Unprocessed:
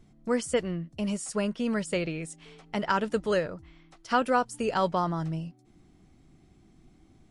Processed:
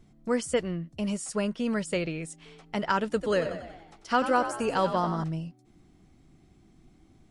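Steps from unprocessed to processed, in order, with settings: 3.1–5.24 frequency-shifting echo 93 ms, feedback 54%, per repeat +49 Hz, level -10 dB

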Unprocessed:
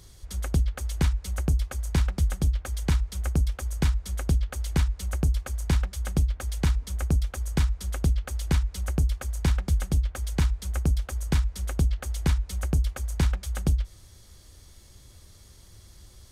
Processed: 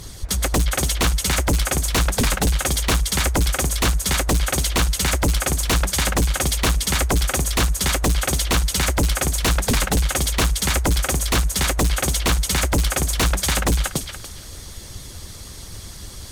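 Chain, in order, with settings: harmonic-percussive split harmonic -13 dB; thinning echo 0.288 s, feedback 23%, high-pass 920 Hz, level -3 dB; sine folder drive 16 dB, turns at -14 dBFS

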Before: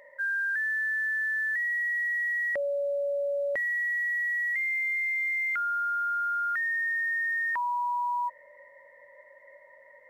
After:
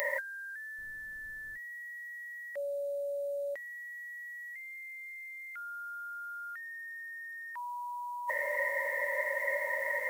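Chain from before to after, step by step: RIAA curve recording; negative-ratio compressor -39 dBFS, ratio -0.5; 0.77–1.56 added noise brown -63 dBFS; gain +5 dB

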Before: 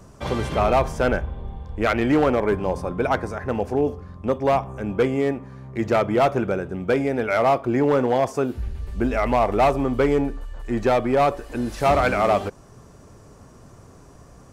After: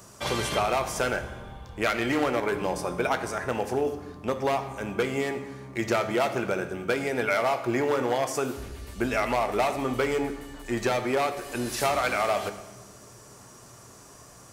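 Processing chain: tilt +3 dB/oct; compressor, threshold -22 dBFS, peak gain reduction 8 dB; on a send: reverb RT60 1.3 s, pre-delay 4 ms, DRR 7.5 dB

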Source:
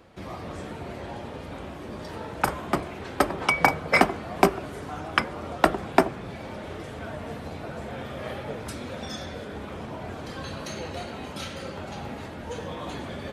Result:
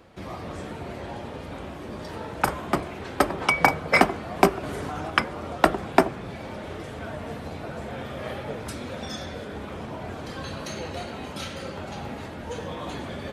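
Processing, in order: 4.63–5.1 fast leveller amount 100%; gain +1 dB

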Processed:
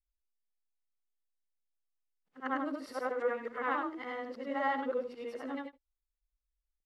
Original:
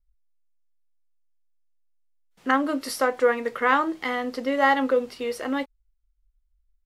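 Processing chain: short-time reversal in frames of 0.207 s; LPF 1900 Hz 6 dB/oct; low shelf 95 Hz -9.5 dB; gain -7.5 dB

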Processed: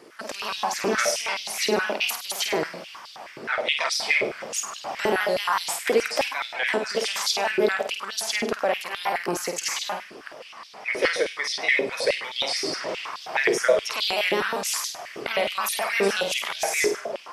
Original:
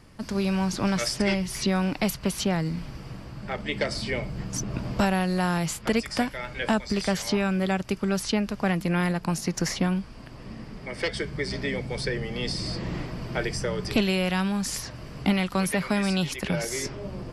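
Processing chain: trilling pitch shifter +2 st, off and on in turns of 80 ms; limiter -18.5 dBFS, peak gain reduction 7.5 dB; flutter echo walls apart 8.7 m, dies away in 0.49 s; stepped high-pass 9.5 Hz 400–3800 Hz; gain +3.5 dB

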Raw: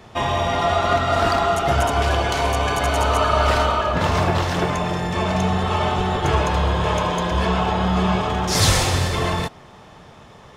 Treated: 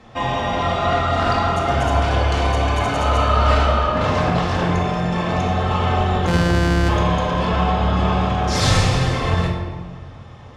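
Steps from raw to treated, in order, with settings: 6.27–6.89 sample sorter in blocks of 256 samples; air absorption 59 m; shoebox room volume 1300 m³, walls mixed, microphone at 2.1 m; gain -3 dB

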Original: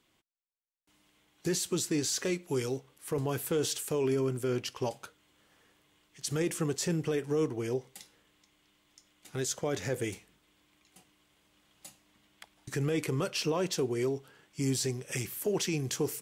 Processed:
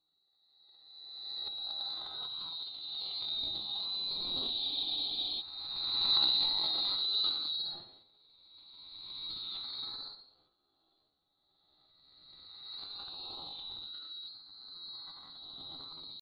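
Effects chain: spectral swells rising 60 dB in 2.21 s; Doppler pass-by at 5.89, 17 m/s, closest 19 m; reverb RT60 0.30 s, pre-delay 3 ms, DRR -1 dB; flange 0.16 Hz, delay 0.2 ms, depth 9.2 ms, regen -79%; inverted band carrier 3200 Hz; band shelf 1600 Hz -15.5 dB 1.2 oct; flutter echo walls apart 10.1 m, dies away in 0.46 s; transient shaper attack -1 dB, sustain +11 dB; pitch shift +5.5 st; spectral freeze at 4.61, 0.78 s; gain -1.5 dB

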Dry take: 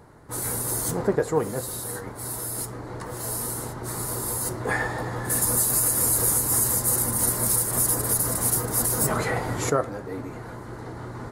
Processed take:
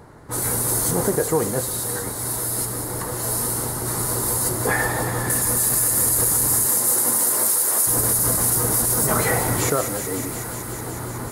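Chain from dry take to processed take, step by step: 6.65–7.86 HPF 200 Hz -> 470 Hz 12 dB/oct; limiter -16.5 dBFS, peak gain reduction 7 dB; thin delay 0.185 s, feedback 85%, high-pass 2700 Hz, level -7 dB; gain +5.5 dB

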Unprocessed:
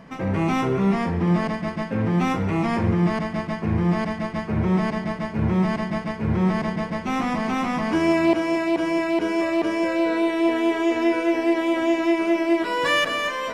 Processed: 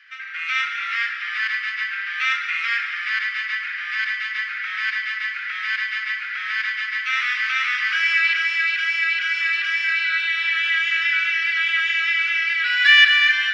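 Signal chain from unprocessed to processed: octaver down 1 oct, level 0 dB; steep high-pass 1400 Hz 72 dB/oct; high shelf 2100 Hz +9.5 dB; AGC gain up to 6 dB; air absorption 310 m; reverb RT60 3.5 s, pre-delay 33 ms, DRR 7 dB; gain +5 dB

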